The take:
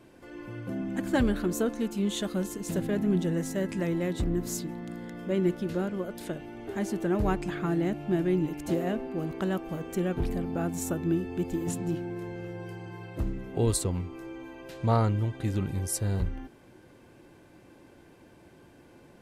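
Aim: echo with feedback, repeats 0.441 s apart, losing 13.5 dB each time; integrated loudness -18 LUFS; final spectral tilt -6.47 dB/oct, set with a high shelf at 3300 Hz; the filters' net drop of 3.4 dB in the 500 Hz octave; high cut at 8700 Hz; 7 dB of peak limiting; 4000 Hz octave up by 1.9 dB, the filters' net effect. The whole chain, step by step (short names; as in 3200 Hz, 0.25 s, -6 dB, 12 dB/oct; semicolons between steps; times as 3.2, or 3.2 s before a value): LPF 8700 Hz; bell 500 Hz -5 dB; high shelf 3300 Hz -3.5 dB; bell 4000 Hz +5 dB; limiter -22 dBFS; feedback echo 0.441 s, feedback 21%, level -13.5 dB; gain +15.5 dB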